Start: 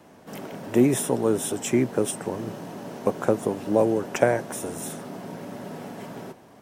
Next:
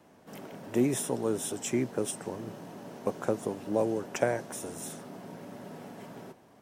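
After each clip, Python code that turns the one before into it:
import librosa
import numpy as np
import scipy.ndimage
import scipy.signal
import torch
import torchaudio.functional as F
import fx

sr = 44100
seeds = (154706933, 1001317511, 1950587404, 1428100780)

y = fx.dynamic_eq(x, sr, hz=5800.0, q=0.85, threshold_db=-45.0, ratio=4.0, max_db=4)
y = y * librosa.db_to_amplitude(-7.5)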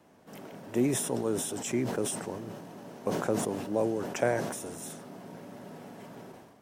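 y = fx.sustainer(x, sr, db_per_s=46.0)
y = y * librosa.db_to_amplitude(-1.5)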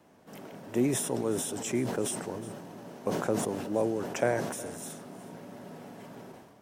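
y = x + 10.0 ** (-18.0 / 20.0) * np.pad(x, (int(367 * sr / 1000.0), 0))[:len(x)]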